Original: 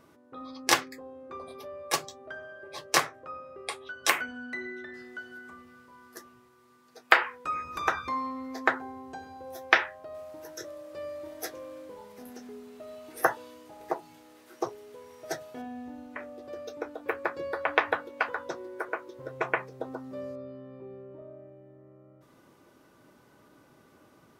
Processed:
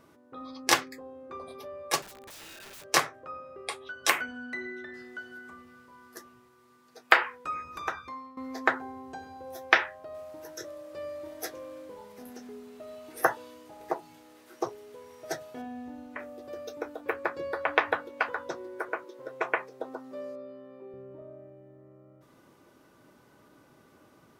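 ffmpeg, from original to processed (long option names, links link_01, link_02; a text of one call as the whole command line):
ffmpeg -i in.wav -filter_complex "[0:a]asettb=1/sr,asplit=3[link_01][link_02][link_03];[link_01]atrim=end=2.024[link_04];[link_02]atrim=start=2.02:end=2.84,asetpts=PTS-STARTPTS,afade=type=in:duration=0.004:curve=qsin,afade=type=out:start_time=0.816:duration=0.004:curve=qsin,aeval=exprs='(mod(133*val(0)+1,2)-1)/133':channel_layout=same[link_05];[link_03]atrim=start=2.836[link_06];[link_04][link_05]acrossfade=duration=0.004:curve1=hsin:curve2=qsin[link_07];[link_07][link_06]acrossfade=duration=0.004:curve1=qsin:curve2=hsin,asettb=1/sr,asplit=3[link_08][link_09][link_10];[link_08]atrim=end=16.194[link_11];[link_09]atrim=start=16.19:end=17.01,asetpts=PTS-STARTPTS,afade=type=in:duration=0.004:curve=qsin,afade=type=out:start_time=0.816:duration=0.004:curve=qsin,highshelf=frequency=9700:gain=8[link_12];[link_10]atrim=start=17.006[link_13];[link_11][link_12]acrossfade=duration=0.004:curve1=hsin:curve2=qsin[link_14];[link_14][link_13]acrossfade=duration=0.004:curve1=qsin:curve2=hsin,asettb=1/sr,asplit=3[link_15][link_16][link_17];[link_15]atrim=end=19.044[link_18];[link_16]atrim=start=19.04:end=20.94,asetpts=PTS-STARTPTS,afade=type=in:duration=0.004:curve=qsin,afade=type=out:start_time=1.896:duration=0.004:curve=qsin,highpass=290[link_19];[link_17]atrim=start=20.936[link_20];[link_18][link_19]acrossfade=duration=0.004:curve1=hsin:curve2=qsin[link_21];[link_21][link_20]acrossfade=duration=0.004:curve1=qsin:curve2=hsin,asplit=2[link_22][link_23];[link_22]atrim=end=8.37,asetpts=PTS-STARTPTS,afade=type=out:start_time=7.19:duration=1.18:silence=0.16788[link_24];[link_23]atrim=start=8.37,asetpts=PTS-STARTPTS,afade=type=in:duration=0.004:curve=hsin:silence=0.16788[link_25];[link_24][link_25]concat=n=2:v=0:a=1" out.wav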